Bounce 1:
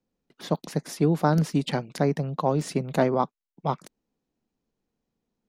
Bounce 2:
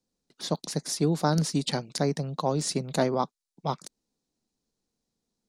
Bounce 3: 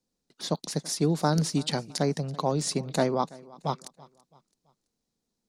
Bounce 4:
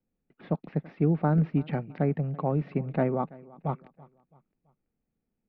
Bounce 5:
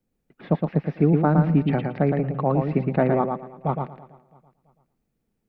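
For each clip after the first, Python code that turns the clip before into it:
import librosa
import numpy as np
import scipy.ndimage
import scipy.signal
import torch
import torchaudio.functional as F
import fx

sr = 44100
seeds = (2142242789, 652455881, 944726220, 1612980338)

y1 = fx.band_shelf(x, sr, hz=6200.0, db=11.0, octaves=1.7)
y1 = F.gain(torch.from_numpy(y1), -3.0).numpy()
y2 = fx.echo_feedback(y1, sr, ms=332, feedback_pct=40, wet_db=-22)
y3 = scipy.signal.sosfilt(scipy.signal.ellip(4, 1.0, 70, 2500.0, 'lowpass', fs=sr, output='sos'), y2)
y3 = fx.low_shelf(y3, sr, hz=230.0, db=9.5)
y3 = fx.notch(y3, sr, hz=1000.0, q=8.4)
y3 = F.gain(torch.from_numpy(y3), -3.0).numpy()
y4 = fx.hpss(y3, sr, part='percussive', gain_db=3)
y4 = fx.echo_feedback(y4, sr, ms=114, feedback_pct=19, wet_db=-4.5)
y4 = F.gain(torch.from_numpy(y4), 4.0).numpy()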